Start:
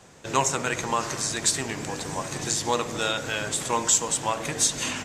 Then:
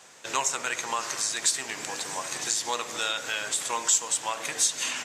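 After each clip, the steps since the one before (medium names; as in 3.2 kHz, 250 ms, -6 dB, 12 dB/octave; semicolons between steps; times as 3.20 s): high-pass 1.3 kHz 6 dB/octave; in parallel at +3 dB: compression, threshold -34 dBFS, peak gain reduction 16.5 dB; on the sum: trim -3.5 dB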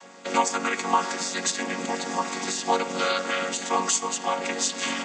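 vocoder on a held chord major triad, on F#3; trim +4 dB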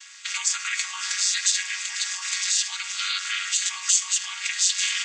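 in parallel at -1.5 dB: compressor with a negative ratio -31 dBFS; on the sum: Bessel high-pass 2.6 kHz, order 6; trim +3.5 dB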